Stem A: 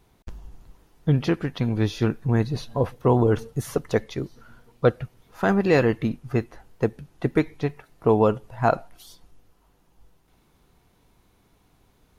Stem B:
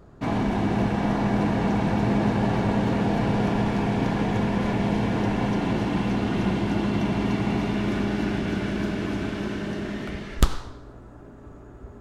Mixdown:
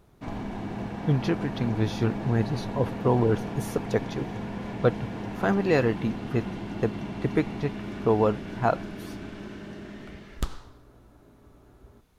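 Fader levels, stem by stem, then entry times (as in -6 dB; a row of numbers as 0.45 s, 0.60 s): -3.5 dB, -10.5 dB; 0.00 s, 0.00 s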